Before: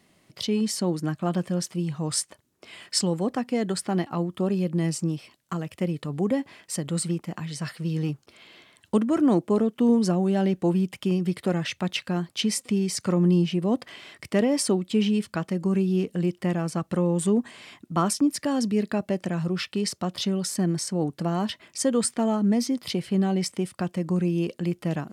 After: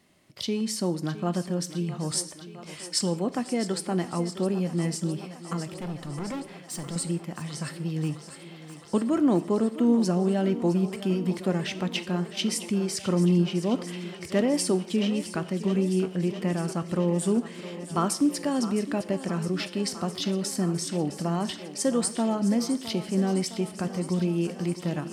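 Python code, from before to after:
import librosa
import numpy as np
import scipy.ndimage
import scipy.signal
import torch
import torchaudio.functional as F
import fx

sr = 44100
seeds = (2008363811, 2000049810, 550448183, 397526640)

y = fx.clip_hard(x, sr, threshold_db=-29.5, at=(5.69, 6.96))
y = fx.echo_thinned(y, sr, ms=661, feedback_pct=79, hz=190.0, wet_db=-13.0)
y = fx.rev_gated(y, sr, seeds[0], gate_ms=210, shape='falling', drr_db=12.0)
y = F.gain(torch.from_numpy(y), -2.0).numpy()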